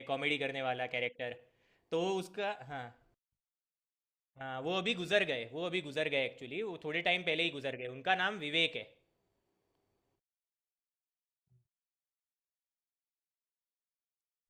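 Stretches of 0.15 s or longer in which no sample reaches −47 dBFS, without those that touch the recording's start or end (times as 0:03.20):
0:01.36–0:01.92
0:02.89–0:04.39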